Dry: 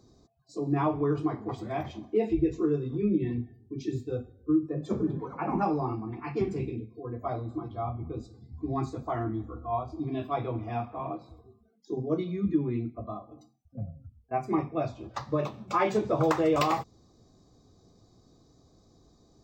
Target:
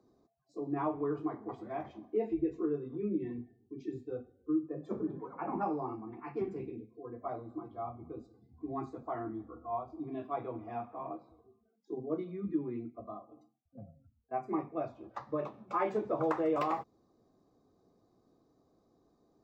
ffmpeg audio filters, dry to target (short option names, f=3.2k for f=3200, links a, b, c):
-filter_complex "[0:a]acrossover=split=200 2100:gain=0.224 1 0.2[a][b][c];[a][b][c]amix=inputs=3:normalize=0,volume=-5.5dB"